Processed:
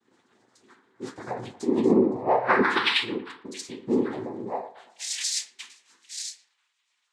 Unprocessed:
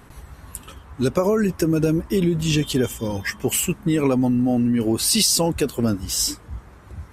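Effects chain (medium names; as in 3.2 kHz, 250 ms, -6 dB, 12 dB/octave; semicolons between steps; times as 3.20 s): 2.07–3.59 s: resonances exaggerated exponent 3; high-pass sweep 210 Hz -> 3 kHz, 4.40–4.97 s; in parallel at -6.5 dB: crossover distortion -31 dBFS; 1.80–3.03 s: on the sum: painted sound rise 220–3000 Hz -7 dBFS; inharmonic resonator 310 Hz, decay 0.4 s, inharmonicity 0.008; noise-vocoded speech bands 6; band-passed feedback delay 115 ms, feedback 51%, band-pass 860 Hz, level -15 dB; on a send at -12 dB: reverberation RT60 0.25 s, pre-delay 6 ms; on the sum: loudness maximiser +10.5 dB; random flutter of the level, depth 55%; trim -8 dB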